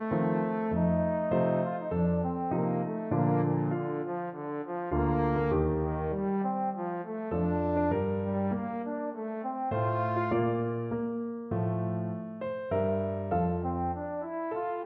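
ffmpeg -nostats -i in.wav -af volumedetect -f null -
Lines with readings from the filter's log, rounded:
mean_volume: -29.9 dB
max_volume: -15.3 dB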